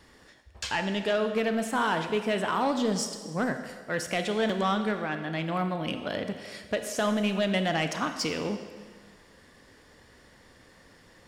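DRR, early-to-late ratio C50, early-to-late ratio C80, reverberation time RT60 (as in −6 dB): 7.5 dB, 8.5 dB, 9.5 dB, 1.6 s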